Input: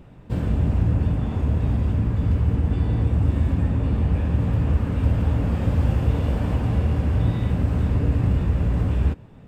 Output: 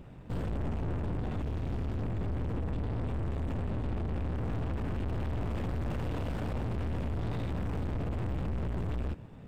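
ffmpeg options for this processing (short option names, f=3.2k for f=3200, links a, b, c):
-filter_complex "[0:a]asettb=1/sr,asplit=3[a][b][c];[a]atrim=end=1.434[d];[b]atrim=start=1.43:end=2.02,asetpts=PTS-STARTPTS,afade=t=in:d=0.004:c=qsin,afade=t=out:st=0.586:d=0.004:c=qsin,aeval=exprs='sgn(val(0))*max(abs(val(0))-0.0112,0)':c=same[e];[c]atrim=start=2.016[f];[d][e]acrossfade=d=0.004:c1=hsin:c2=qsin[g];[g][f]acrossfade=d=0.004:c1=qsin:c2=hsin,asettb=1/sr,asplit=3[h][i][j];[h]atrim=end=5.904[k];[i]atrim=start=5.9:end=6.47,asetpts=PTS-STARTPTS,afade=t=in:d=0.004:c=qsin,afade=t=out:st=0.566:d=0.004:c=qsin,lowshelf=f=65:g=-10[l];[j]atrim=start=6.466[m];[k][l]acrossfade=d=0.004:c1=hsin:c2=qsin[n];[n][m]acrossfade=d=0.004:c1=qsin:c2=hsin,aeval=exprs='(tanh(39.8*val(0)+0.55)-tanh(0.55))/39.8':c=same"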